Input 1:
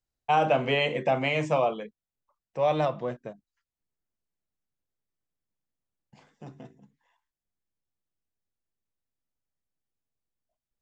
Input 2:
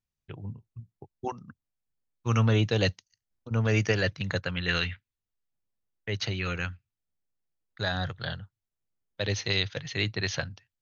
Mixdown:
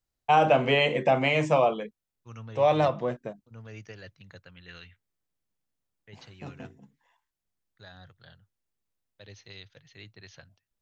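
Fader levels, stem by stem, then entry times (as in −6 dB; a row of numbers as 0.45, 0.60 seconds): +2.5, −19.5 decibels; 0.00, 0.00 seconds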